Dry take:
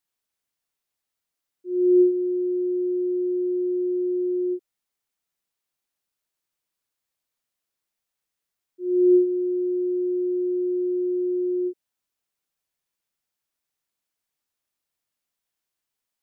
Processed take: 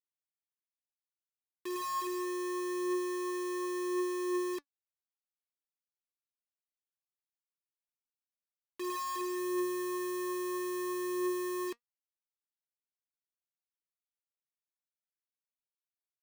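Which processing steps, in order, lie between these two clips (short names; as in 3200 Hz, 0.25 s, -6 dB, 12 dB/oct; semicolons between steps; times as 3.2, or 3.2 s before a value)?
low shelf 370 Hz -4.5 dB; compressor 16:1, threshold -22 dBFS, peak gain reduction 7.5 dB; sine folder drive 8 dB, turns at -20 dBFS; bit-crush 5-bit; flange 0.24 Hz, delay 2.3 ms, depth 5.4 ms, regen +74%; gain -6.5 dB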